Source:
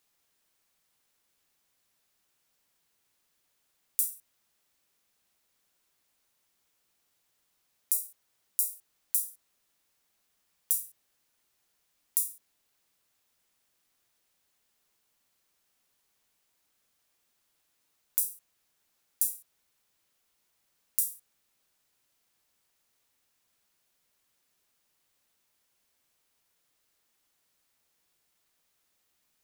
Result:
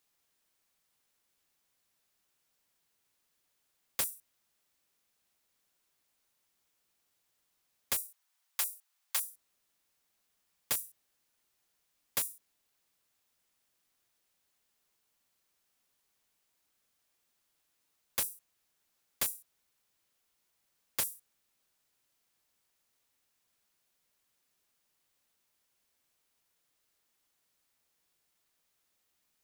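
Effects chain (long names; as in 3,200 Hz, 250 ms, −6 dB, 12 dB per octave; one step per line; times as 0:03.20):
wrap-around overflow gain 17.5 dB
0:08.00–0:09.30: high-pass filter 730 Hz 24 dB per octave
level −3 dB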